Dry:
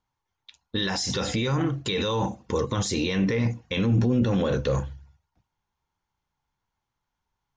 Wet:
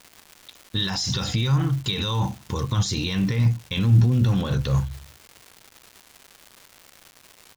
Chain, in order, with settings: graphic EQ 125/250/500/2000/4000/8000 Hz +6/-5/-11/-6/+3/-4 dB; crackle 420 per s -37 dBFS; trim +3 dB

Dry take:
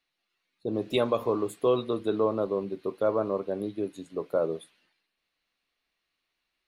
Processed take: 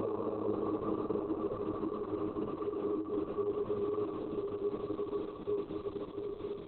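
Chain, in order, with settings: Paulstretch 43×, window 0.25 s, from 1.35 s; trim -6 dB; Opus 6 kbps 48 kHz

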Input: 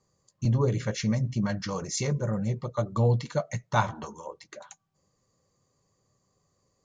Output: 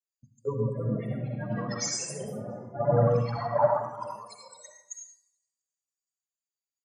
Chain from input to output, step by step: time reversed locally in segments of 224 ms; low-pass that closes with the level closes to 1 kHz, closed at -22 dBFS; tilt EQ +3 dB/octave; hum notches 50/100/150/200/250 Hz; loudest bins only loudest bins 8; on a send: feedback delay 346 ms, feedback 44%, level -22.5 dB; on the sum: algorithmic reverb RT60 1.1 s, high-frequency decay 0.8×, pre-delay 40 ms, DRR -1 dB; ever faster or slower copies 396 ms, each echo +3 st, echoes 3, each echo -6 dB; three bands expanded up and down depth 100%

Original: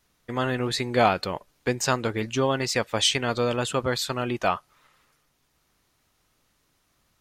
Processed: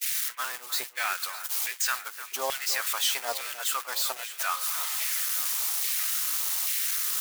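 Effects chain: zero-crossing glitches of -14 dBFS; gate -22 dBFS, range -33 dB; LFO high-pass saw down 1.2 Hz 660–2200 Hz; on a send: echo whose repeats swap between lows and highs 304 ms, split 2.4 kHz, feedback 79%, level -12.5 dB; on the sum: trim -8 dB

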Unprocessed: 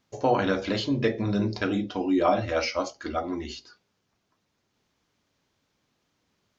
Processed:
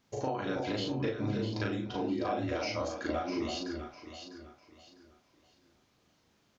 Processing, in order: compression 6:1, threshold -34 dBFS, peak gain reduction 16 dB; doubling 38 ms -2 dB; on a send: echo whose repeats swap between lows and highs 326 ms, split 810 Hz, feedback 54%, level -3 dB

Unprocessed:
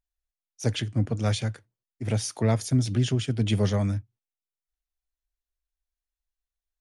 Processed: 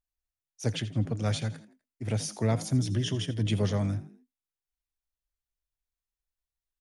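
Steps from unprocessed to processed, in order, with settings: 2.87–3.47 s: rippled EQ curve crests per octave 1.2, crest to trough 9 dB; frequency-shifting echo 83 ms, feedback 39%, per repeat +50 Hz, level -16 dB; trim -3.5 dB

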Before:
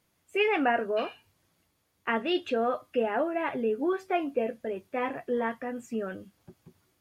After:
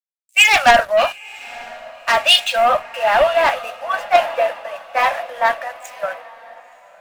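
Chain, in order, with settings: steep high-pass 550 Hz 96 dB/octave; treble shelf 5.7 kHz +4 dB; in parallel at +2 dB: level held to a coarse grid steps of 12 dB; on the sum: waveshaping leveller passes 3; on a send: echo that smears into a reverb 983 ms, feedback 54%, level -10 dB; on the sum: three bands expanded up and down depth 100%; trim +2 dB

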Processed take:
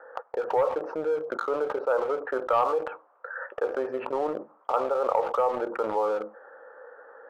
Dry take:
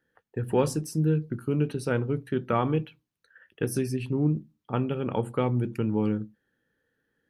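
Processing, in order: elliptic band-pass 520–1300 Hz, stop band 80 dB; waveshaping leveller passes 1; level flattener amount 70%

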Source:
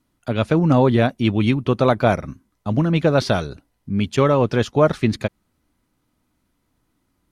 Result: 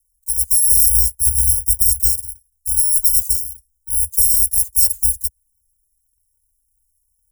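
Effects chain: bit-reversed sample order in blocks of 256 samples; inverse Chebyshev band-stop 360–1700 Hz, stop band 80 dB; peaking EQ 690 Hz +8 dB 1.4 oct, from 0.86 s 85 Hz, from 2.09 s 840 Hz; trim +3 dB

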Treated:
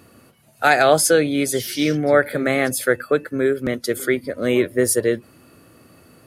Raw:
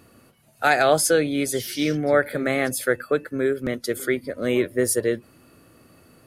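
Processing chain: high-pass 49 Hz; trim +3.5 dB

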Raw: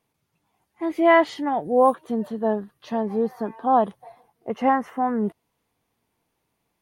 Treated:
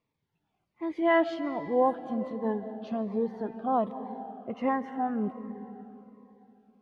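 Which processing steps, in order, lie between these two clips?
low-pass 4 kHz 12 dB/octave; on a send at -12.5 dB: bass shelf 430 Hz +6 dB + reverberation RT60 3.3 s, pre-delay 105 ms; on the sum: Shepard-style phaser falling 1.3 Hz; trim -5.5 dB

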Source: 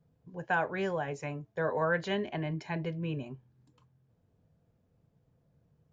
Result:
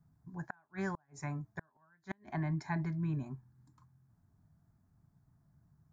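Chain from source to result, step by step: inverted gate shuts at -23 dBFS, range -38 dB; static phaser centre 1.2 kHz, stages 4; trim +2.5 dB

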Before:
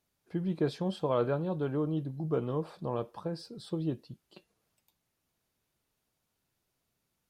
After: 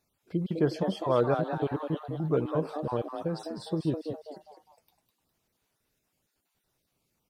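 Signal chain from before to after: random holes in the spectrogram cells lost 31%; frequency-shifting echo 204 ms, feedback 36%, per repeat +150 Hz, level -7.5 dB; trim +4 dB

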